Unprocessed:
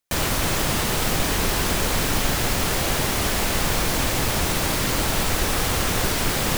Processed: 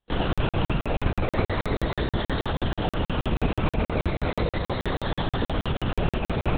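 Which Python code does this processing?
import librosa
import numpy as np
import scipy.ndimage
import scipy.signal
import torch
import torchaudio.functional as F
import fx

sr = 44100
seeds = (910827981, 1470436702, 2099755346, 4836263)

y = fx.spec_ripple(x, sr, per_octave=0.85, drift_hz=-0.36, depth_db=9)
y = fx.dereverb_blind(y, sr, rt60_s=1.4)
y = fx.peak_eq(y, sr, hz=2400.0, db=-9.0, octaves=1.9)
y = fx.notch(y, sr, hz=850.0, q=26.0)
y = np.clip(y, -10.0 ** (-20.5 / 20.0), 10.0 ** (-20.5 / 20.0))
y = fx.pitch_keep_formants(y, sr, semitones=-9.0)
y = fx.rev_spring(y, sr, rt60_s=3.9, pass_ms=(45, 57), chirp_ms=50, drr_db=8.0)
y = fx.lpc_vocoder(y, sr, seeds[0], excitation='whisper', order=10)
y = fx.buffer_crackle(y, sr, first_s=0.33, period_s=0.16, block=2048, kind='zero')
y = F.gain(torch.from_numpy(y), 4.0).numpy()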